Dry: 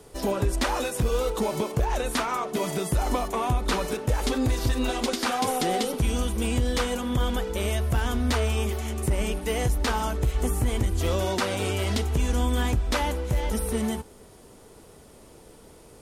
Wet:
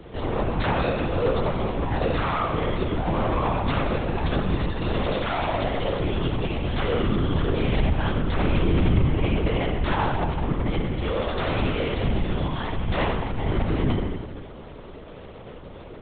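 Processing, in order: compressor, threshold -26 dBFS, peak gain reduction 7.5 dB; soft clip -30 dBFS, distortion -11 dB; spring tank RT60 1.4 s, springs 41/51 ms, chirp 55 ms, DRR -0.5 dB; LPC vocoder at 8 kHz whisper; gain +6.5 dB

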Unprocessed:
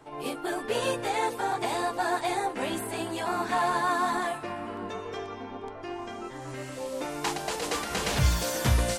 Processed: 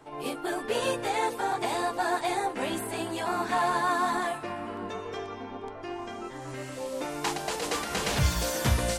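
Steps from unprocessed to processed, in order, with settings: notches 60/120 Hz

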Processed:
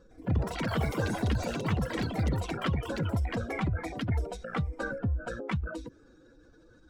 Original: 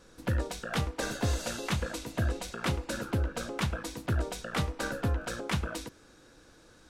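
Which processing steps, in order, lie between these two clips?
spectral contrast raised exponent 1.9; echoes that change speed 0.109 s, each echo +6 st, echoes 3

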